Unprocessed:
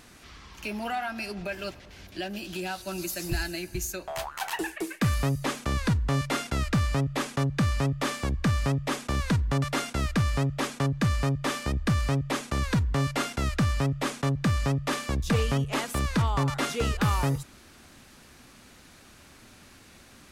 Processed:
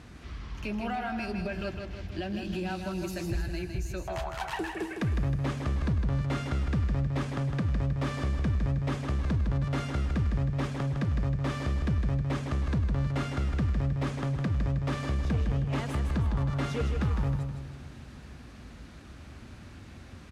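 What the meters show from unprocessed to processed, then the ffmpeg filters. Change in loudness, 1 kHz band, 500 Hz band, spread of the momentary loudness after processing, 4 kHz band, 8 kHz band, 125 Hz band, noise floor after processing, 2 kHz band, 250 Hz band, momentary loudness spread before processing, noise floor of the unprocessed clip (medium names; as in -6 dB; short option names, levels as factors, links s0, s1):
-2.5 dB, -6.0 dB, -4.0 dB, 18 LU, -9.0 dB, -13.5 dB, -1.0 dB, -47 dBFS, -6.5 dB, -2.5 dB, 8 LU, -53 dBFS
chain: -af "highpass=f=45:w=0.5412,highpass=f=45:w=1.3066,aemphasis=mode=reproduction:type=bsi,acompressor=threshold=0.0282:ratio=2,asoftclip=type=tanh:threshold=0.0631,aecho=1:1:158|316|474|632|790|948:0.501|0.231|0.106|0.0488|0.0224|0.0103"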